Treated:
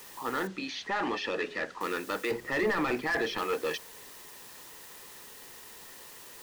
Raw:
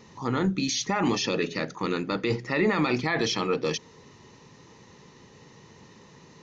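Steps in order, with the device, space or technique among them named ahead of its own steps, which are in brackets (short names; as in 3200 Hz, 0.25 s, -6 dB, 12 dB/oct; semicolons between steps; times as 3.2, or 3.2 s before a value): drive-through speaker (BPF 440–3400 Hz; bell 1700 Hz +6.5 dB 0.38 oct; hard clip -23.5 dBFS, distortion -11 dB; white noise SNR 15 dB); 2.31–3.38 tilt -2 dB/oct; notch 2200 Hz, Q 24; 0.47–1.81 air absorption 110 m; gain -1 dB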